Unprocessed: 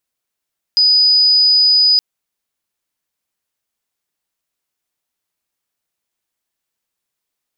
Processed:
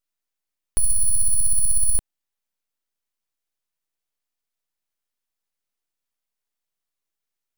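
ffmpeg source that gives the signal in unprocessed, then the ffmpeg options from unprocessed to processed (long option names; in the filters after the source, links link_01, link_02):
-f lavfi -i "aevalsrc='0.398*sin(2*PI*4970*t)':duration=1.22:sample_rate=44100"
-af "flanger=delay=0.1:depth=3.1:regen=73:speed=0.52:shape=triangular,aeval=exprs='abs(val(0))':channel_layout=same"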